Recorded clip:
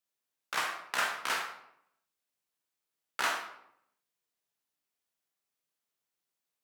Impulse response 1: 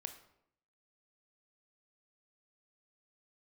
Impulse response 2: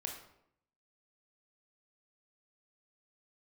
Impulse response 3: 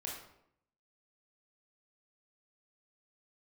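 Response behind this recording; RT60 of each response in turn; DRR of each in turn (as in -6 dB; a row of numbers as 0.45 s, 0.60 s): 2; 0.75 s, 0.75 s, 0.75 s; 7.0 dB, 1.0 dB, -3.0 dB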